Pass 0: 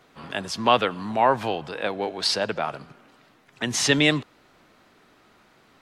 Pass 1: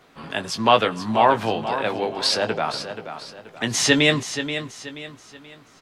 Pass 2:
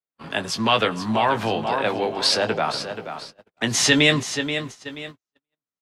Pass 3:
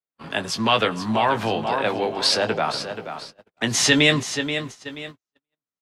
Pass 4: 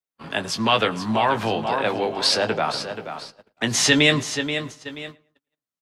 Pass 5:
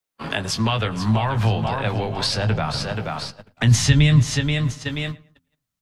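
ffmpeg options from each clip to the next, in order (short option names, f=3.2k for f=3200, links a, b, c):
-filter_complex "[0:a]asplit=2[a][b];[b]adelay=18,volume=-8dB[c];[a][c]amix=inputs=2:normalize=0,asplit=2[d][e];[e]aecho=0:1:480|960|1440|1920:0.316|0.114|0.041|0.0148[f];[d][f]amix=inputs=2:normalize=0,volume=2dB"
-filter_complex "[0:a]agate=range=-49dB:threshold=-37dB:ratio=16:detection=peak,acrossover=split=160|1400|3700[a][b][c][d];[b]alimiter=limit=-14.5dB:level=0:latency=1[e];[a][e][c][d]amix=inputs=4:normalize=0,volume=1.5dB"
-af anull
-filter_complex "[0:a]asplit=2[a][b];[b]adelay=110,lowpass=f=2.4k:p=1,volume=-22dB,asplit=2[c][d];[d]adelay=110,lowpass=f=2.4k:p=1,volume=0.32[e];[a][c][e]amix=inputs=3:normalize=0"
-filter_complex "[0:a]acrossover=split=150[a][b];[b]acompressor=threshold=-31dB:ratio=4[c];[a][c]amix=inputs=2:normalize=0,asubboost=boost=9:cutoff=130,bandreject=f=85.56:t=h:w=4,bandreject=f=171.12:t=h:w=4,bandreject=f=256.68:t=h:w=4,volume=8dB"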